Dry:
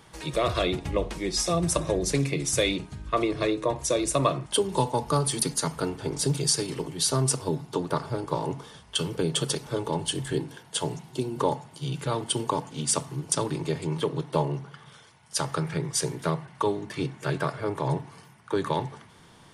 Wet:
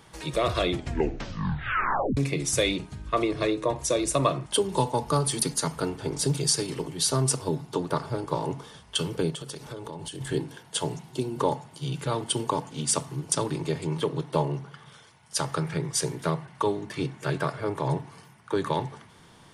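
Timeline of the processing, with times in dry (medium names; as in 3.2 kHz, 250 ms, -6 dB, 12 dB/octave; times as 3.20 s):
0.67 s: tape stop 1.50 s
9.30–10.21 s: compression 12:1, threshold -33 dBFS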